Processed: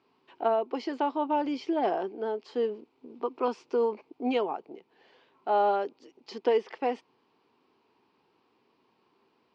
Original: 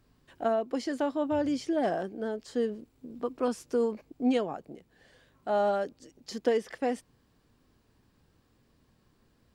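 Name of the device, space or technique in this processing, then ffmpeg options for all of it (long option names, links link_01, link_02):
phone earpiece: -af "highpass=360,equalizer=frequency=390:width_type=q:width=4:gain=6,equalizer=frequency=570:width_type=q:width=4:gain=-6,equalizer=frequency=920:width_type=q:width=4:gain=8,equalizer=frequency=1700:width_type=q:width=4:gain=-8,equalizer=frequency=2500:width_type=q:width=4:gain=4,equalizer=frequency=3700:width_type=q:width=4:gain=-4,lowpass=frequency=4400:width=0.5412,lowpass=frequency=4400:width=1.3066,volume=2.5dB"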